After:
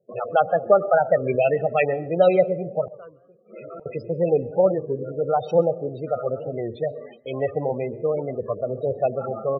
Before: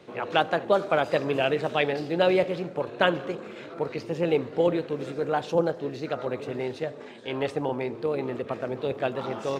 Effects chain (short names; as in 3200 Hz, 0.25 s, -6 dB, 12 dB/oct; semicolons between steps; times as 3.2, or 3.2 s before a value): gate with hold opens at -33 dBFS; comb 1.6 ms, depth 45%; loudest bins only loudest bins 16; 2.88–3.86 flipped gate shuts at -31 dBFS, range -26 dB; on a send at -21.5 dB: reverb RT60 0.55 s, pre-delay 0.118 s; on the sum: record warp 33 1/3 rpm, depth 160 cents; gain +4 dB